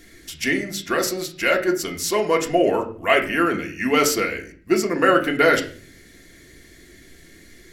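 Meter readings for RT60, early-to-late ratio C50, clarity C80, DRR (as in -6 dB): 0.45 s, 11.5 dB, 16.0 dB, 1.5 dB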